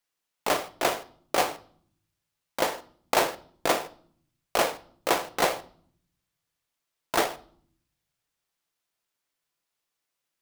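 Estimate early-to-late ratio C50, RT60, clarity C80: 18.5 dB, 0.55 s, 22.5 dB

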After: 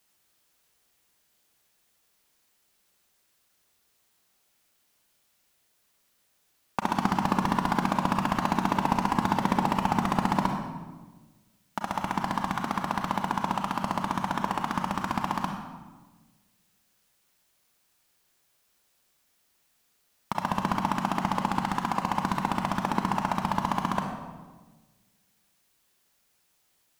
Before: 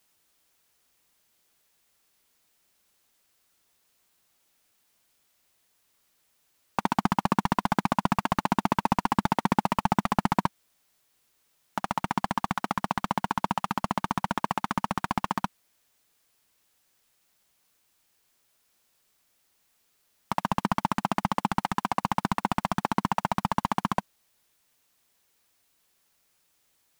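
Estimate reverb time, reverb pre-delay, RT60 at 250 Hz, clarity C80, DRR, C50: 1.3 s, 31 ms, 1.6 s, 6.5 dB, 3.0 dB, 4.5 dB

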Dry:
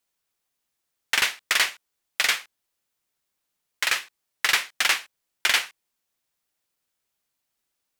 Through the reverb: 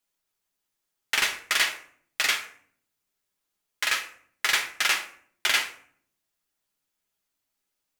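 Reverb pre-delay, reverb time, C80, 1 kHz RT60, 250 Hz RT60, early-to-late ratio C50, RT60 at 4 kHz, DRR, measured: 5 ms, 0.55 s, 14.0 dB, 0.55 s, 0.85 s, 10.5 dB, 0.35 s, 2.5 dB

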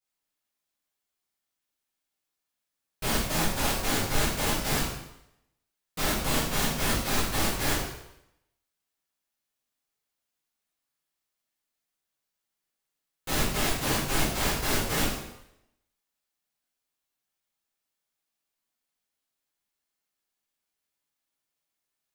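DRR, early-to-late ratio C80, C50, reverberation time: -10.0 dB, 5.0 dB, 2.0 dB, 0.80 s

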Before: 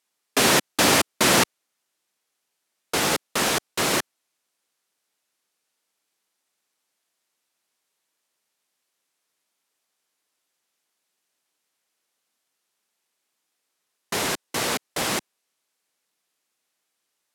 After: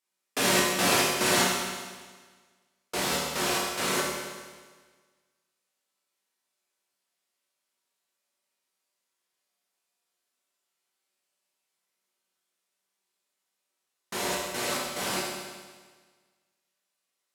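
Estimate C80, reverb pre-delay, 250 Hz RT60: 2.5 dB, 5 ms, 1.5 s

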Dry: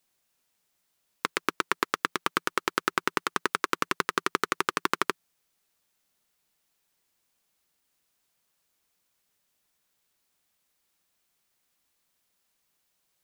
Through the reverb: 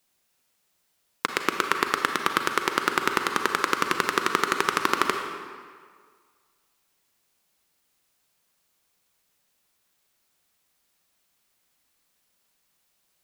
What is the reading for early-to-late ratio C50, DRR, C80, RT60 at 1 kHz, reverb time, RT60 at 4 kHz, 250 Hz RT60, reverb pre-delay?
5.0 dB, 4.5 dB, 6.5 dB, 1.8 s, 1.8 s, 1.4 s, 1.7 s, 34 ms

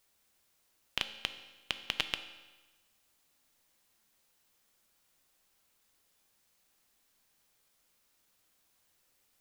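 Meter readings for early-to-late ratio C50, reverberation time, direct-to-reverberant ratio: 11.5 dB, 1.2 s, 9.0 dB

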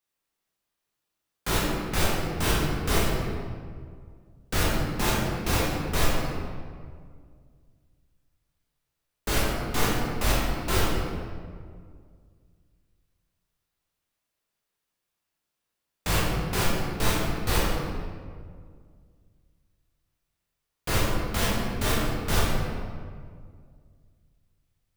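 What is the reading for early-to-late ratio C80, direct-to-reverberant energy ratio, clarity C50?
0.5 dB, -6.5 dB, -2.0 dB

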